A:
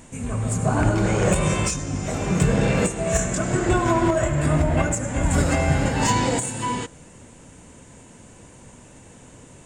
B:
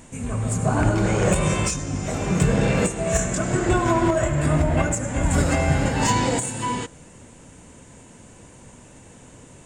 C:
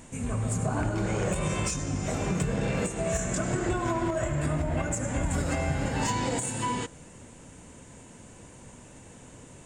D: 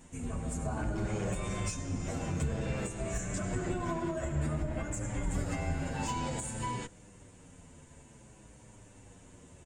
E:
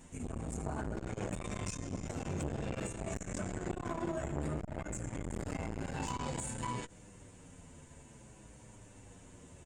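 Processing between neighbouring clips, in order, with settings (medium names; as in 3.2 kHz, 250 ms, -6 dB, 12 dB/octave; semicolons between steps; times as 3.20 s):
no audible change
compression, threshold -22 dBFS, peak gain reduction 8.5 dB; trim -2.5 dB
octave divider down 1 oct, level -1 dB; endless flanger 8.2 ms -0.54 Hz; trim -4.5 dB
transformer saturation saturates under 520 Hz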